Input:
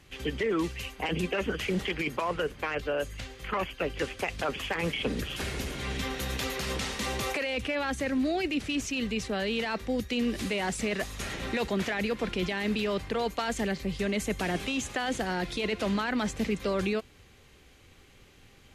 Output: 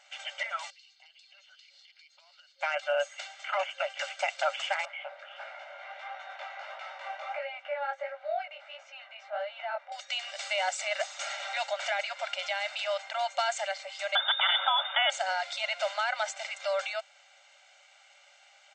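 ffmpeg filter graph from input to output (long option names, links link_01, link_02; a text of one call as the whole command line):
ffmpeg -i in.wav -filter_complex "[0:a]asettb=1/sr,asplit=3[link_01][link_02][link_03];[link_01]atrim=end=0.704[link_04];[link_02]atrim=start=0.7:end=2.61,asetpts=PTS-STARTPTS,afade=type=in:duration=0.004:curve=qsin,afade=type=out:start_time=1.906:duration=0.004:curve=qsin,bandpass=frequency=4400:width_type=q:width=5.9,acompressor=threshold=-55dB:ratio=10:attack=3.2:release=140:knee=1:detection=peak[link_05];[link_03]atrim=start=2.606[link_06];[link_04][link_05]acrossfade=duration=0.004:curve1=hsin:curve2=qsin[link_07];[link_07][link_06]acrossfade=duration=0.004:curve1=qsin:curve2=hsin,asettb=1/sr,asplit=3[link_08][link_09][link_10];[link_08]atrim=end=4.854[link_11];[link_09]atrim=start=4.85:end=9.92,asetpts=PTS-STARTPTS,afade=type=in:duration=0.004:curve=qsin,afade=type=out:start_time=5.066:duration=0.004:curve=qsin,lowpass=1600,flanger=delay=16:depth=6.5:speed=1.5[link_12];[link_10]atrim=start=9.916[link_13];[link_11][link_12]acrossfade=duration=0.004:curve1=hsin:curve2=qsin[link_14];[link_14][link_13]acrossfade=duration=0.004:curve1=qsin:curve2=hsin,asettb=1/sr,asplit=3[link_15][link_16][link_17];[link_15]atrim=end=14.154[link_18];[link_16]atrim=start=14.15:end=15.1,asetpts=PTS-STARTPTS,afade=type=in:duration=0.004:curve=qsin,afade=type=out:start_time=0.946:duration=0.004:curve=qsin,equalizer=frequency=2600:width_type=o:width=0.91:gain=10.5,lowpass=frequency=3100:width_type=q:width=0.5098,lowpass=frequency=3100:width_type=q:width=0.6013,lowpass=frequency=3100:width_type=q:width=0.9,lowpass=frequency=3100:width_type=q:width=2.563,afreqshift=-3700[link_19];[link_17]atrim=start=15.096[link_20];[link_18][link_19]acrossfade=duration=0.004:curve1=hsin:curve2=qsin[link_21];[link_21][link_20]acrossfade=duration=0.004:curve1=qsin:curve2=hsin,afftfilt=real='re*between(b*sr/4096,540,8600)':imag='im*between(b*sr/4096,540,8600)':win_size=4096:overlap=0.75,aecho=1:1:1.4:0.74" out.wav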